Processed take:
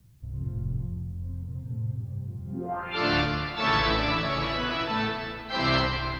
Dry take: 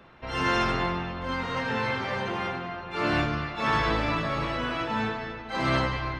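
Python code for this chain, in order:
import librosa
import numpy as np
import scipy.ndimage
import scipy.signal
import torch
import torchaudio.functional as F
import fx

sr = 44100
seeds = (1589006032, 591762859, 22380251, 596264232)

y = fx.filter_sweep_lowpass(x, sr, from_hz=110.0, to_hz=4600.0, start_s=2.45, end_s=2.99, q=3.0)
y = fx.quant_dither(y, sr, seeds[0], bits=12, dither='triangular')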